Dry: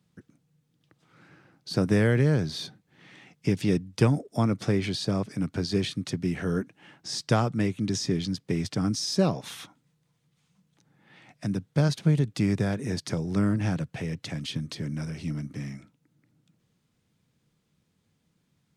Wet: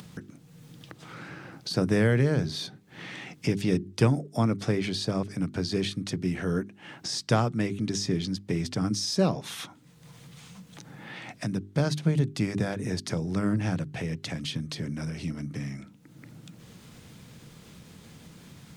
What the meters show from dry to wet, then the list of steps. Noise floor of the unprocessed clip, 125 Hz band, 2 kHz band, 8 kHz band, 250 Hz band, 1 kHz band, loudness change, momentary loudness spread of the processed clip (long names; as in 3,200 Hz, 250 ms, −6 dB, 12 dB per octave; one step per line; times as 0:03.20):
−73 dBFS, −1.5 dB, +0.5 dB, +0.5 dB, −1.0 dB, 0.0 dB, −1.0 dB, 20 LU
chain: mains-hum notches 50/100/150/200/250/300/350/400 Hz
upward compression, threshold −29 dBFS